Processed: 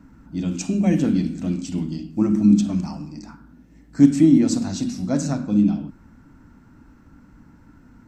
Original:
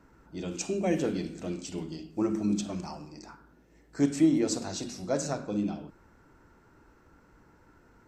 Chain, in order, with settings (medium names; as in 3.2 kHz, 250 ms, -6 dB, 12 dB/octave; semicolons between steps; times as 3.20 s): resonant low shelf 320 Hz +7 dB, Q 3; trim +3.5 dB